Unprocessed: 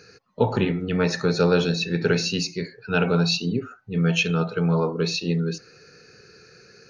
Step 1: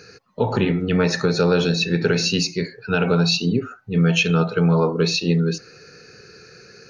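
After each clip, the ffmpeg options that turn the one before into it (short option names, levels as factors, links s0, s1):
-af "alimiter=limit=0.224:level=0:latency=1:release=119,volume=1.78"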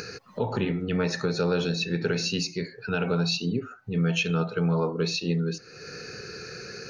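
-af "acompressor=mode=upward:threshold=0.112:ratio=2.5,volume=0.422"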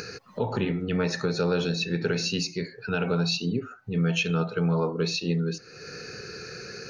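-af anull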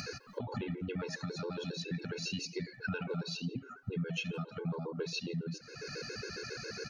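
-filter_complex "[0:a]acompressor=threshold=0.0224:ratio=6,asplit=2[s0][s1];[s1]adelay=170,highpass=300,lowpass=3400,asoftclip=type=hard:threshold=0.0282,volume=0.112[s2];[s0][s2]amix=inputs=2:normalize=0,afftfilt=real='re*gt(sin(2*PI*7.3*pts/sr)*(1-2*mod(floor(b*sr/1024/280),2)),0)':imag='im*gt(sin(2*PI*7.3*pts/sr)*(1-2*mod(floor(b*sr/1024/280),2)),0)':win_size=1024:overlap=0.75,volume=1.12"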